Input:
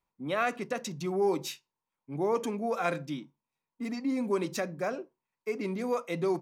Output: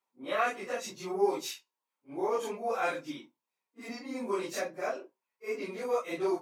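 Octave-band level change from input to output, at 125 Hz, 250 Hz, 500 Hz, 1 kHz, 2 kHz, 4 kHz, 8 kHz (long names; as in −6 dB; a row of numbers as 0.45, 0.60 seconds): −13.5, −6.0, −1.0, 0.0, 0.0, 0.0, 0.0 decibels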